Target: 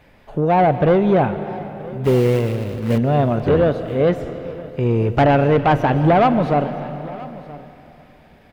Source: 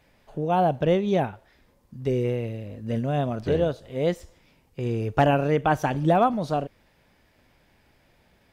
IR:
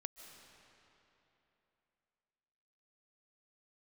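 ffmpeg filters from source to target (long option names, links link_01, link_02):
-filter_complex "[0:a]acrossover=split=3300[link_01][link_02];[link_02]acompressor=threshold=-53dB:ratio=4:attack=1:release=60[link_03];[link_01][link_03]amix=inputs=2:normalize=0,asoftclip=type=tanh:threshold=-19.5dB,asettb=1/sr,asplit=3[link_04][link_05][link_06];[link_04]atrim=end=2.044[link_07];[link_05]atrim=start=2.04:end=2.98,asetpts=PTS-STARTPTS,afade=type=in:duration=0.004:curve=qsin,afade=type=out:start_time=0.936:duration=0.004:curve=qsin,acrusher=bits=3:mode=log:mix=0:aa=0.000001[link_08];[link_06]atrim=start=2.976[link_09];[link_07][link_08]acrossfade=duration=0.004:curve1=hsin:curve2=qsin[link_10];[link_10][link_09]acrossfade=duration=0.004:curve1=qsin:curve2=hsin,aecho=1:1:973:0.106,asplit=2[link_11][link_12];[1:a]atrim=start_sample=2205,lowpass=3800[link_13];[link_12][link_13]afir=irnorm=-1:irlink=0,volume=6.5dB[link_14];[link_11][link_14]amix=inputs=2:normalize=0,volume=3.5dB"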